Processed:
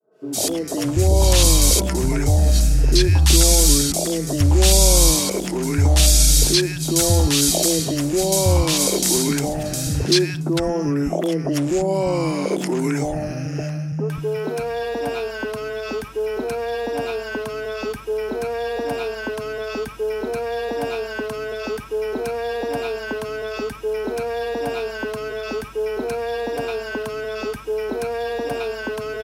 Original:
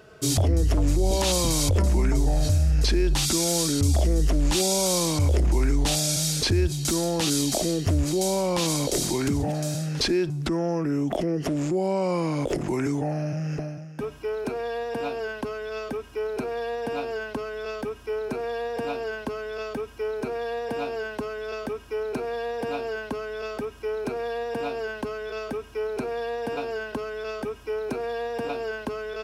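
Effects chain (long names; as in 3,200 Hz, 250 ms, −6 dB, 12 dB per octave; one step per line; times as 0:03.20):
fade in at the beginning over 0.52 s
high-shelf EQ 7,900 Hz +7 dB
three-band delay without the direct sound mids, highs, lows 110/590 ms, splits 200/980 Hz
level +6 dB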